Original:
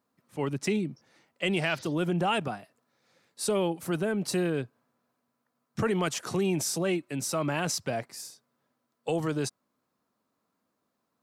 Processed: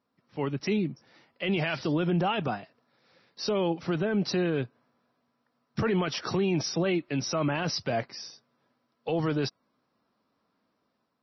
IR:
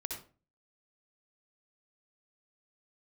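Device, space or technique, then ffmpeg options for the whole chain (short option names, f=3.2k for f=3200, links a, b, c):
low-bitrate web radio: -af "dynaudnorm=f=520:g=3:m=4.5dB,alimiter=limit=-18.5dB:level=0:latency=1:release=16" -ar 22050 -c:a libmp3lame -b:a 24k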